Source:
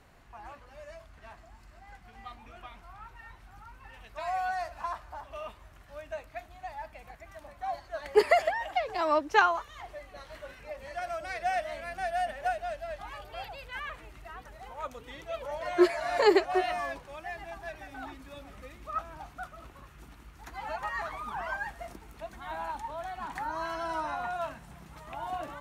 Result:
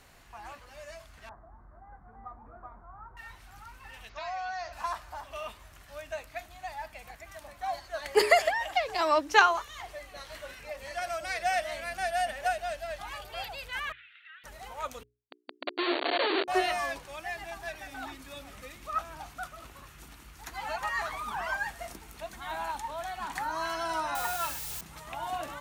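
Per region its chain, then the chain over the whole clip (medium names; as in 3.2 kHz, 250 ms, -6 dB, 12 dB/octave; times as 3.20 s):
1.29–3.17 s: inverse Chebyshev low-pass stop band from 2.6 kHz + upward compressor, threshold -50 dBFS
4.09–4.73 s: steep low-pass 6.6 kHz 72 dB/octave + compression 2:1, threshold -38 dBFS
13.92–14.44 s: Chebyshev band-pass 1.4–3.7 kHz, order 4 + compression 1.5:1, threshold -55 dBFS
15.03–16.48 s: hum notches 50/100/150/200/250/300/350/400/450 Hz + Schmitt trigger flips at -28 dBFS + brick-wall FIR band-pass 260–4600 Hz
24.15–24.81 s: comb 2.3 ms, depth 68% + word length cut 8-bit, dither triangular
whole clip: treble shelf 2.5 kHz +10.5 dB; hum notches 60/120/180/240/300/360/420 Hz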